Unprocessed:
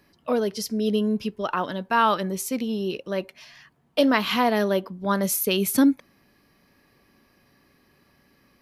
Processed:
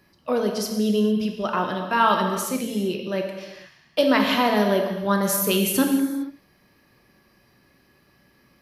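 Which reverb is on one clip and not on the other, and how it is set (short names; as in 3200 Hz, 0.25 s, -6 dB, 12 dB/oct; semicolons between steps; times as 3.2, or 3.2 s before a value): non-linear reverb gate 0.48 s falling, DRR 2.5 dB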